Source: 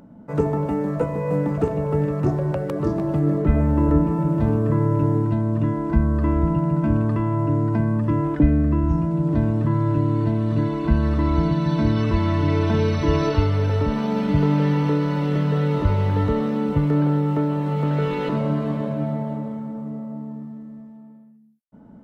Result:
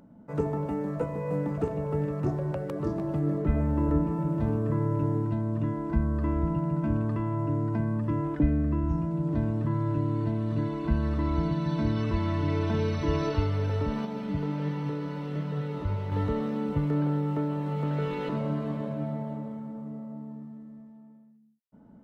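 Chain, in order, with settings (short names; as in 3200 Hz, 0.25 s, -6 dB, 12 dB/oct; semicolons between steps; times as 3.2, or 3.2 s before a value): 14.05–16.12 flange 1.4 Hz, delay 4.9 ms, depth 6.8 ms, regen +74%; gain -7.5 dB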